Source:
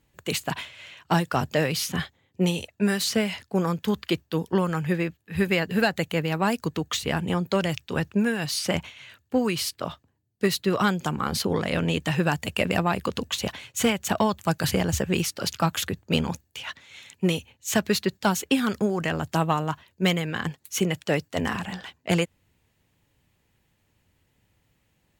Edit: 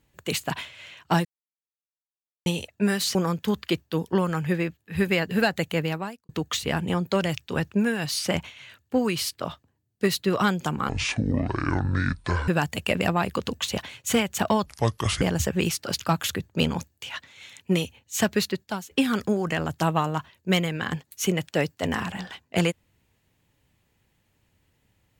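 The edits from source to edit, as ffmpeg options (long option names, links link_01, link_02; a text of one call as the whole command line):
ffmpeg -i in.wav -filter_complex "[0:a]asplit=10[link_01][link_02][link_03][link_04][link_05][link_06][link_07][link_08][link_09][link_10];[link_01]atrim=end=1.25,asetpts=PTS-STARTPTS,afade=type=out:start_time=1.246:duration=0.004:curve=hsin[link_11];[link_02]atrim=start=1.25:end=2.46,asetpts=PTS-STARTPTS,volume=0[link_12];[link_03]atrim=start=2.46:end=3.152,asetpts=PTS-STARTPTS,afade=type=in:duration=0.004:curve=hsin[link_13];[link_04]atrim=start=3.548:end=6.69,asetpts=PTS-STARTPTS,afade=type=out:start_time=2.732:duration=0.41:curve=qua[link_14];[link_05]atrim=start=6.69:end=11.294,asetpts=PTS-STARTPTS,afade=type=in:duration=0.004:curve=hsin[link_15];[link_06]atrim=start=11.29:end=12.18,asetpts=PTS-STARTPTS,asetrate=24696,aresample=44100[link_16];[link_07]atrim=start=12.176:end=14.364[link_17];[link_08]atrim=start=14.36:end=14.75,asetpts=PTS-STARTPTS,asetrate=30870,aresample=44100[link_18];[link_09]atrim=start=14.746:end=18.44,asetpts=PTS-STARTPTS,afade=type=out:start_time=3.144:duration=0.55:silence=0.125893[link_19];[link_10]atrim=start=18.44,asetpts=PTS-STARTPTS,afade=type=in:duration=0.004:curve=hsin:silence=0.125893[link_20];[link_11][link_12][link_13]concat=n=3:v=0:a=1[link_21];[link_14][link_15]concat=n=2:v=0:a=1[link_22];[link_21][link_22]acrossfade=duration=0.004:curve1=hsin:curve2=hsin[link_23];[link_23][link_16]acrossfade=duration=0.004:curve1=hsin:curve2=hsin[link_24];[link_24][link_17]acrossfade=duration=0.004:curve1=hsin:curve2=hsin[link_25];[link_25][link_18]acrossfade=duration=0.004:curve1=hsin:curve2=hsin[link_26];[link_19][link_20]concat=n=2:v=0:a=1[link_27];[link_26][link_27]acrossfade=duration=0.004:curve1=hsin:curve2=hsin" out.wav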